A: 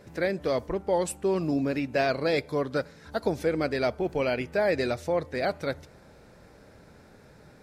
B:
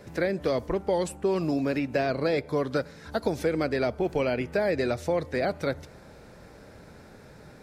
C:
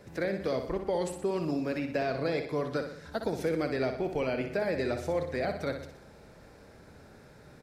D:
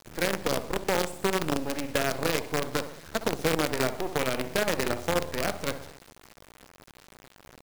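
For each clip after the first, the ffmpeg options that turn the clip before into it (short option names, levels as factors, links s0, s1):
-filter_complex "[0:a]acrossover=split=440|2000[s0][s1][s2];[s0]acompressor=threshold=0.0282:ratio=4[s3];[s1]acompressor=threshold=0.0251:ratio=4[s4];[s2]acompressor=threshold=0.00631:ratio=4[s5];[s3][s4][s5]amix=inputs=3:normalize=0,volume=1.58"
-af "aecho=1:1:61|122|183|244|305|366:0.422|0.215|0.11|0.0559|0.0285|0.0145,volume=0.562"
-af "acrusher=bits=5:dc=4:mix=0:aa=0.000001,volume=1.5"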